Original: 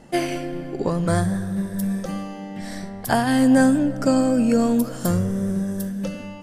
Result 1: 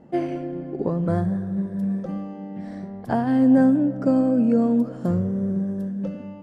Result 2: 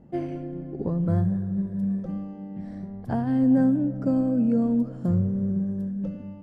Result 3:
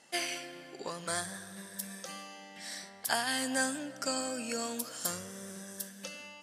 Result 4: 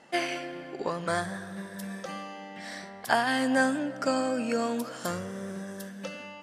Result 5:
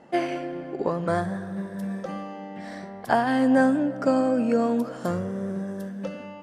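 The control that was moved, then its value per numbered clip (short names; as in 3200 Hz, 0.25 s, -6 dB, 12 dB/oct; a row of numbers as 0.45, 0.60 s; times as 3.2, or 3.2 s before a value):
band-pass, frequency: 260, 100, 6000, 2100, 820 Hz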